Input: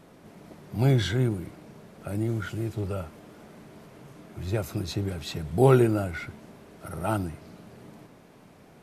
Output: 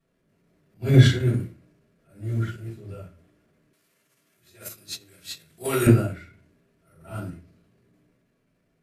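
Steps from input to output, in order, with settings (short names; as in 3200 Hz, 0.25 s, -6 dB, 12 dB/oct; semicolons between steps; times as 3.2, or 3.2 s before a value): bell 810 Hz -12.5 dB 0.39 oct; reverb RT60 0.45 s, pre-delay 3 ms, DRR -10.5 dB; transient shaper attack -6 dB, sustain +4 dB; 3.73–5.87 tilt +4 dB/oct; upward expander 2.5:1, over -25 dBFS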